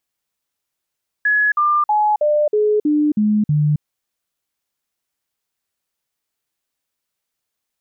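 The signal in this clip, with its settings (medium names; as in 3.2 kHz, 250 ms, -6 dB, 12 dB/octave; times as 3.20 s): stepped sine 1.69 kHz down, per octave 2, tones 8, 0.27 s, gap 0.05 s -12.5 dBFS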